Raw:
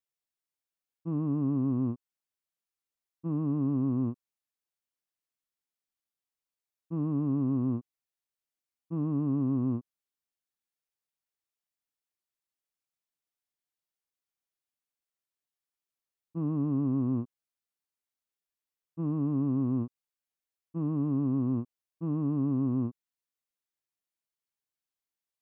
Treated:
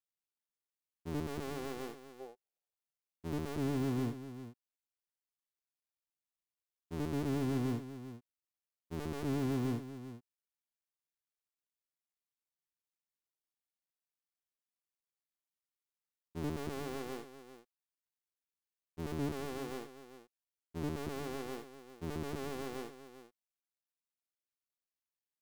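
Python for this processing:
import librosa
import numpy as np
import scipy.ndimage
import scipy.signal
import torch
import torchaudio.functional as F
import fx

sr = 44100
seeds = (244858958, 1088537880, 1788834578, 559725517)

y = fx.cycle_switch(x, sr, every=2, mode='muted')
y = y + 10.0 ** (-12.5 / 20.0) * np.pad(y, (int(396 * sr / 1000.0), 0))[:len(y)]
y = fx.spec_box(y, sr, start_s=2.2, length_s=0.55, low_hz=370.0, high_hz=880.0, gain_db=11)
y = y * librosa.db_to_amplitude(-5.0)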